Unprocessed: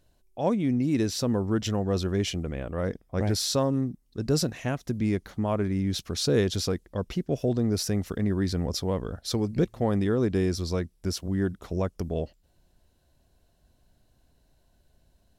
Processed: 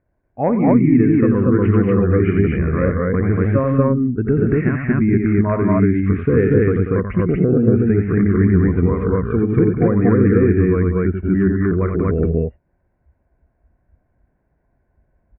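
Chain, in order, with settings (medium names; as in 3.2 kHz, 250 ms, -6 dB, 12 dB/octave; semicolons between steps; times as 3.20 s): high-pass 42 Hz 6 dB/octave; in parallel at -3 dB: overload inside the chain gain 21 dB; on the sum: steep low-pass 2.3 kHz 72 dB/octave; compression 2.5:1, threshold -23 dBFS, peak gain reduction 5.5 dB; on a send: loudspeakers at several distances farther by 30 m -5 dB, 64 m -8 dB, 81 m 0 dB; on the sum: spectral noise reduction 14 dB; trim +8 dB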